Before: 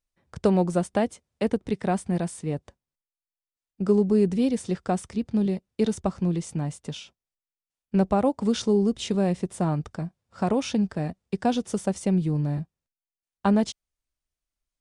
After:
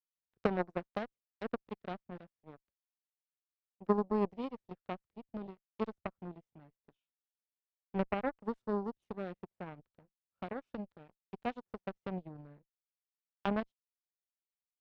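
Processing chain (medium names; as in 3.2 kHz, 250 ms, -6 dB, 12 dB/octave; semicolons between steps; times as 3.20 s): low-pass 2.5 kHz 12 dB/octave; Chebyshev shaper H 2 -26 dB, 3 -10 dB, 7 -41 dB, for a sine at -10 dBFS; trim -5.5 dB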